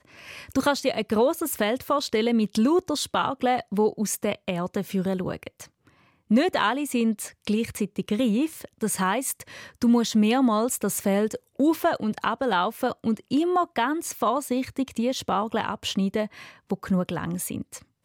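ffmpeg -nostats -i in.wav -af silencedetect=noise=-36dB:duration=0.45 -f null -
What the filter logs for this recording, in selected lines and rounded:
silence_start: 5.64
silence_end: 6.30 | silence_duration: 0.66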